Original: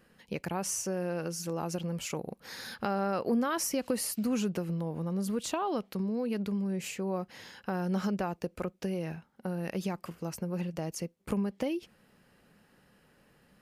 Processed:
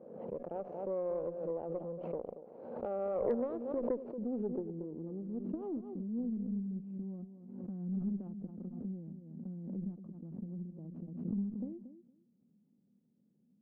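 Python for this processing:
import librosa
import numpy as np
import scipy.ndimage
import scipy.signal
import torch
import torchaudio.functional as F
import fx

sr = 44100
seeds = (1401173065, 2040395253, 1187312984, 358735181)

p1 = scipy.ndimage.median_filter(x, 25, mode='constant')
p2 = fx.bandpass_edges(p1, sr, low_hz=130.0, high_hz=4000.0)
p3 = fx.low_shelf(p2, sr, hz=180.0, db=-12.0)
p4 = fx.filter_sweep_lowpass(p3, sr, from_hz=560.0, to_hz=220.0, start_s=3.07, end_s=6.67, q=3.2)
p5 = fx.high_shelf(p4, sr, hz=2300.0, db=6.0)
p6 = fx.comb_fb(p5, sr, f0_hz=240.0, decay_s=0.71, harmonics='odd', damping=0.0, mix_pct=50)
p7 = p6 + fx.echo_feedback(p6, sr, ms=230, feedback_pct=17, wet_db=-11.5, dry=0)
p8 = fx.cheby_harmonics(p7, sr, harmonics=(4,), levels_db=(-23,), full_scale_db=-21.0)
p9 = fx.pre_swell(p8, sr, db_per_s=51.0)
y = p9 * 10.0 ** (-2.0 / 20.0)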